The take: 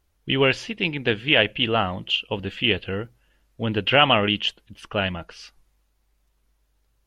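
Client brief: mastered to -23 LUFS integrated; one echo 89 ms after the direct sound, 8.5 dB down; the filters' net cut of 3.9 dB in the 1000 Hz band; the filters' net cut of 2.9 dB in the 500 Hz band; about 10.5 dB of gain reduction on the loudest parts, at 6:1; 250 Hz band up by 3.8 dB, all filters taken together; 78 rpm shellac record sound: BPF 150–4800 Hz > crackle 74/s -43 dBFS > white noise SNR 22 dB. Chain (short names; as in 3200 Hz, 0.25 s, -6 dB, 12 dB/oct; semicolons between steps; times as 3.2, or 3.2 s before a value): bell 250 Hz +7 dB; bell 500 Hz -4.5 dB; bell 1000 Hz -4.5 dB; compressor 6:1, threshold -25 dBFS; BPF 150–4800 Hz; echo 89 ms -8.5 dB; crackle 74/s -43 dBFS; white noise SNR 22 dB; gain +7 dB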